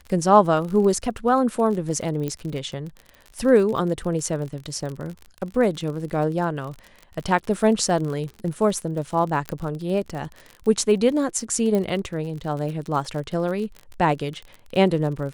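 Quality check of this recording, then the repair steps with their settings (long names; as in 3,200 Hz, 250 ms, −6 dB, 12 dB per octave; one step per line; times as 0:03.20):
surface crackle 47 per second −30 dBFS
0:02.28: click −15 dBFS
0:09.49: click −13 dBFS
0:11.75: click −13 dBFS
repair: click removal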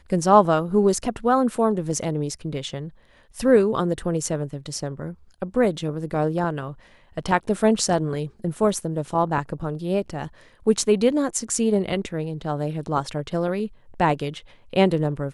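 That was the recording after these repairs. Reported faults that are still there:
none of them is left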